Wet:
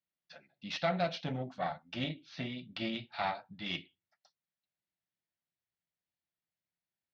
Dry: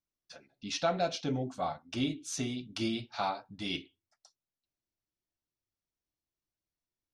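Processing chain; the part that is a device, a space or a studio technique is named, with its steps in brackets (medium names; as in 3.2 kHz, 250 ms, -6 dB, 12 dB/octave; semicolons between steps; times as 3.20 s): 2.09–3.66 s: steep low-pass 4.9 kHz; guitar amplifier (valve stage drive 24 dB, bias 0.75; tone controls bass -5 dB, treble -2 dB; cabinet simulation 76–4500 Hz, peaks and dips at 170 Hz +9 dB, 290 Hz -7 dB, 420 Hz -8 dB, 1.1 kHz -5 dB, 1.9 kHz +4 dB); trim +4 dB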